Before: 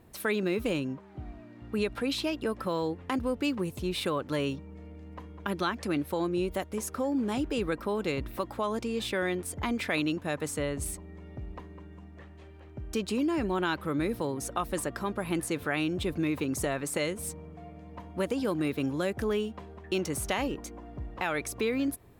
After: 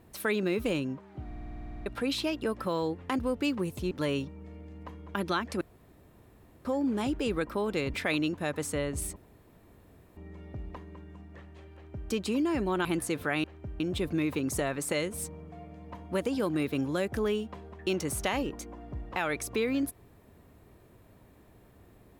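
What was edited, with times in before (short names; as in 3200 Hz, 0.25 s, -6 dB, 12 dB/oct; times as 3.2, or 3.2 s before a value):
1.26 stutter in place 0.05 s, 12 plays
3.91–4.22 cut
5.92–6.96 room tone
8.25–9.78 cut
11 insert room tone 1.01 s
12.57–12.93 copy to 15.85
13.68–15.26 cut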